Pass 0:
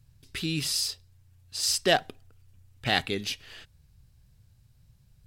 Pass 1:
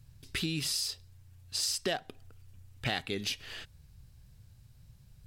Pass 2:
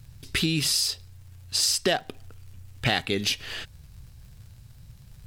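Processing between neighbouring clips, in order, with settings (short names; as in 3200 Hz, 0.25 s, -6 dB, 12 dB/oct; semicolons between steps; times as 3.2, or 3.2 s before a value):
compressor 6:1, threshold -33 dBFS, peak gain reduction 15.5 dB; gain +3 dB
crackle 91/s -54 dBFS; gain +8.5 dB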